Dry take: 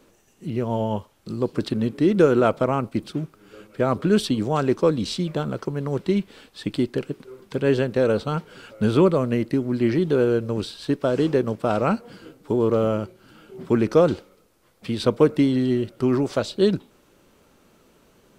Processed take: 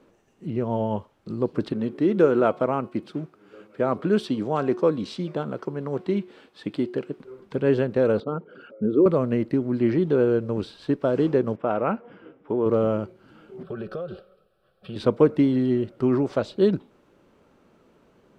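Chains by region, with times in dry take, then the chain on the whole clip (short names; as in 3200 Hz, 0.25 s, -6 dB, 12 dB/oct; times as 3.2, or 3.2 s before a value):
1.72–7.19 HPF 200 Hz 6 dB/oct + de-hum 363.1 Hz, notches 29
8.2–9.06 formant sharpening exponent 2 + HPF 200 Hz
11.56–12.66 polynomial smoothing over 25 samples + low shelf 190 Hz -10 dB
13.63–14.96 fixed phaser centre 1400 Hz, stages 8 + comb 5.3 ms, depth 42% + compressor 12:1, threshold -27 dBFS
whole clip: LPF 1500 Hz 6 dB/oct; low shelf 67 Hz -8.5 dB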